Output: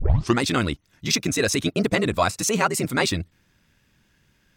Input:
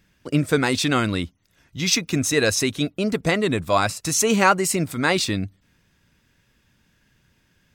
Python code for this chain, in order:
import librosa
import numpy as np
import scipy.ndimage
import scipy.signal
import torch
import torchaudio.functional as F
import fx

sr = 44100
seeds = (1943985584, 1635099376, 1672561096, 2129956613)

y = fx.tape_start_head(x, sr, length_s=0.68)
y = fx.rider(y, sr, range_db=10, speed_s=0.5)
y = fx.stretch_grains(y, sr, factor=0.59, grain_ms=25.0)